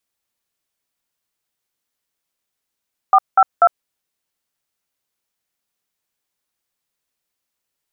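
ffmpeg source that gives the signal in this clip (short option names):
-f lavfi -i "aevalsrc='0.335*clip(min(mod(t,0.244),0.055-mod(t,0.244))/0.002,0,1)*(eq(floor(t/0.244),0)*(sin(2*PI*770*mod(t,0.244))+sin(2*PI*1209*mod(t,0.244)))+eq(floor(t/0.244),1)*(sin(2*PI*770*mod(t,0.244))+sin(2*PI*1336*mod(t,0.244)))+eq(floor(t/0.244),2)*(sin(2*PI*697*mod(t,0.244))+sin(2*PI*1336*mod(t,0.244))))':d=0.732:s=44100"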